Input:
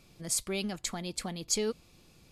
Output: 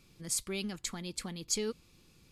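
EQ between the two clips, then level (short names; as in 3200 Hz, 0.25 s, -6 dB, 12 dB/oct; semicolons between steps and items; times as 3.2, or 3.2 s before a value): bell 670 Hz -9 dB 0.54 oct; -2.5 dB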